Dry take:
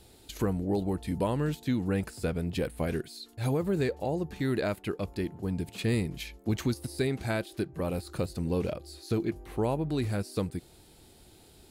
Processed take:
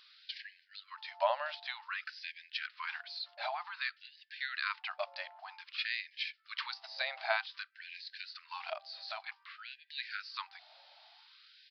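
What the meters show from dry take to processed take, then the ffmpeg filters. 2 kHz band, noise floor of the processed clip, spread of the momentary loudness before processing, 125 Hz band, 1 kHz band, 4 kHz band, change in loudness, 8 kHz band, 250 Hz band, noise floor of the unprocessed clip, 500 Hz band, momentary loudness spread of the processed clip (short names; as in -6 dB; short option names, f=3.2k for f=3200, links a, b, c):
+3.5 dB, -68 dBFS, 6 LU, under -40 dB, 0.0 dB, +3.5 dB, -8.0 dB, under -20 dB, under -40 dB, -57 dBFS, -12.0 dB, 16 LU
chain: -af "aresample=11025,aresample=44100,afftfilt=real='re*gte(b*sr/1024,540*pow(1600/540,0.5+0.5*sin(2*PI*0.53*pts/sr)))':imag='im*gte(b*sr/1024,540*pow(1600/540,0.5+0.5*sin(2*PI*0.53*pts/sr)))':win_size=1024:overlap=0.75,volume=3.5dB"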